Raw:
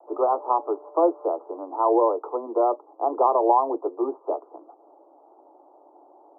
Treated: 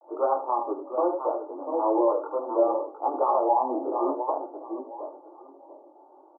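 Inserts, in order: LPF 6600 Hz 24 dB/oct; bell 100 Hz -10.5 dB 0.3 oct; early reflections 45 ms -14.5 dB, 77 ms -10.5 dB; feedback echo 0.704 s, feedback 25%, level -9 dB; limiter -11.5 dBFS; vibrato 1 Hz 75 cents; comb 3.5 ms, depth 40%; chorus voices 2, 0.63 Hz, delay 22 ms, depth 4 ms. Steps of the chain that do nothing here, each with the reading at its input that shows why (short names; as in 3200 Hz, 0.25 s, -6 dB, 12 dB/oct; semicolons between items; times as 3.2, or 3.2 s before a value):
LPF 6600 Hz: input band ends at 1400 Hz; bell 100 Hz: input band starts at 240 Hz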